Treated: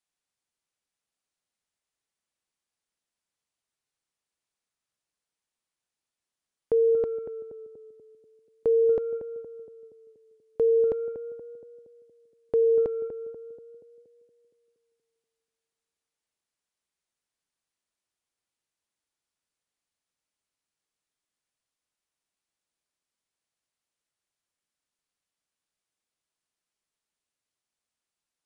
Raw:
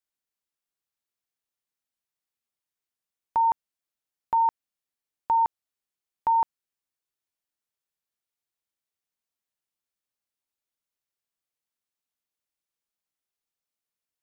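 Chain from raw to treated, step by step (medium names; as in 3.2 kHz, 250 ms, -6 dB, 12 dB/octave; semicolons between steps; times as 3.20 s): tape echo 119 ms, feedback 61%, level -7 dB, low-pass 1.6 kHz; speed mistake 15 ips tape played at 7.5 ips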